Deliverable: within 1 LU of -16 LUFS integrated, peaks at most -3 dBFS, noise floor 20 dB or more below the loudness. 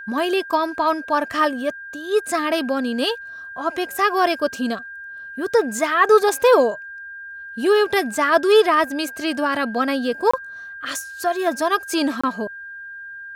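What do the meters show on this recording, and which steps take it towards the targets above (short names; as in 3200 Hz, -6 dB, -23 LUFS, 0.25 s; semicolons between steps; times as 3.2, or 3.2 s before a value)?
dropouts 2; longest dropout 25 ms; steady tone 1600 Hz; tone level -33 dBFS; loudness -20.0 LUFS; peak -3.5 dBFS; loudness target -16.0 LUFS
-> interpolate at 10.31/12.21, 25 ms; notch 1600 Hz, Q 30; gain +4 dB; limiter -3 dBFS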